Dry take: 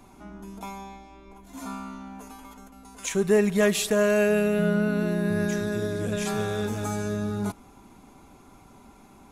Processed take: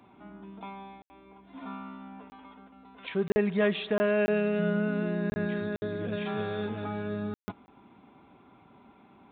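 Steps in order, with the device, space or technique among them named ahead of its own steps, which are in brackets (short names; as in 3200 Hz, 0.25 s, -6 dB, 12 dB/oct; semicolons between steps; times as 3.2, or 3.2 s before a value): call with lost packets (HPF 110 Hz 12 dB/oct; downsampling 8000 Hz; packet loss packets of 20 ms bursts); gain -4 dB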